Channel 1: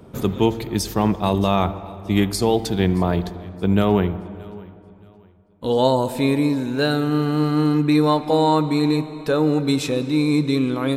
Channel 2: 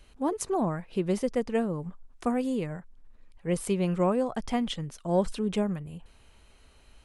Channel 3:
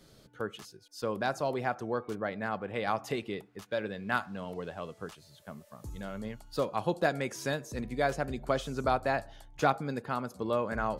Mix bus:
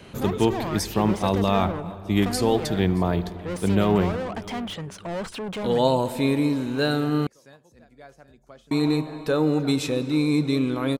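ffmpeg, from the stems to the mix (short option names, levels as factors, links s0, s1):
-filter_complex "[0:a]volume=0.708,asplit=3[s0][s1][s2];[s0]atrim=end=7.27,asetpts=PTS-STARTPTS,afade=t=out:st=7.266:d=0.004:c=hsin[s3];[s1]atrim=start=7.27:end=8.71,asetpts=PTS-STARTPTS,volume=0[s4];[s2]atrim=start=8.71,asetpts=PTS-STARTPTS,afade=t=in:d=0.004:c=hsin[s5];[s3][s4][s5]concat=n=3:v=0:a=1[s6];[1:a]asplit=2[s7][s8];[s8]highpass=f=720:p=1,volume=39.8,asoftclip=type=tanh:threshold=0.2[s9];[s7][s9]amix=inputs=2:normalize=0,lowpass=f=2600:p=1,volume=0.501,volume=0.335[s10];[2:a]volume=0.126,asplit=2[s11][s12];[s12]volume=0.251,aecho=0:1:774:1[s13];[s6][s10][s11][s13]amix=inputs=4:normalize=0"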